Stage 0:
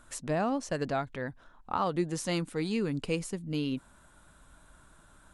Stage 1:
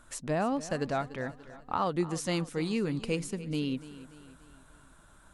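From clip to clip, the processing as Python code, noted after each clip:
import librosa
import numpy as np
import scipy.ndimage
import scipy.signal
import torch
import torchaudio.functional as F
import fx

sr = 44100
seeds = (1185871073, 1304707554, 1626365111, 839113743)

y = fx.echo_feedback(x, sr, ms=291, feedback_pct=49, wet_db=-16.0)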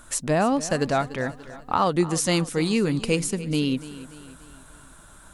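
y = fx.high_shelf(x, sr, hz=5500.0, db=7.5)
y = y * 10.0 ** (8.0 / 20.0)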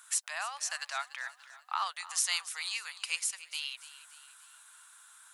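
y = scipy.signal.sosfilt(scipy.signal.bessel(8, 1600.0, 'highpass', norm='mag', fs=sr, output='sos'), x)
y = y * 10.0 ** (-3.0 / 20.0)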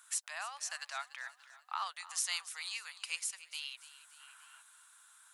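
y = fx.spec_box(x, sr, start_s=4.2, length_s=0.41, low_hz=640.0, high_hz=3300.0, gain_db=7)
y = y * 10.0 ** (-5.0 / 20.0)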